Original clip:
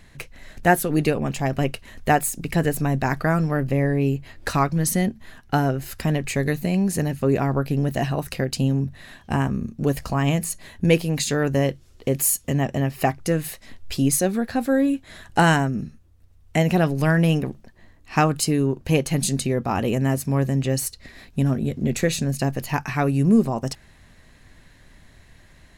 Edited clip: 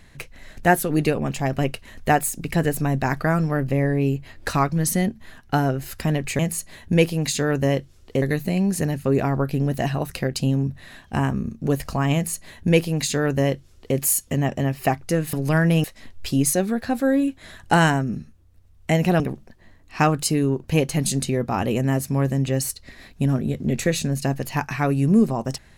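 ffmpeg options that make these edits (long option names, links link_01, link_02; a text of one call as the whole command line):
ffmpeg -i in.wav -filter_complex "[0:a]asplit=6[link_01][link_02][link_03][link_04][link_05][link_06];[link_01]atrim=end=6.392[link_07];[link_02]atrim=start=10.308:end=12.142[link_08];[link_03]atrim=start=6.388:end=13.502[link_09];[link_04]atrim=start=16.858:end=17.372[link_10];[link_05]atrim=start=13.498:end=16.862[link_11];[link_06]atrim=start=17.368[link_12];[link_07][link_08]acrossfade=duration=0.004:curve1=hsin:curve2=hsin[link_13];[link_13][link_09]acrossfade=duration=0.004:curve1=hsin:curve2=hsin[link_14];[link_14][link_10]acrossfade=duration=0.004:curve1=hsin:curve2=hsin[link_15];[link_15][link_11]acrossfade=duration=0.004:curve1=hsin:curve2=hsin[link_16];[link_16][link_12]acrossfade=duration=0.004:curve1=hsin:curve2=hsin" out.wav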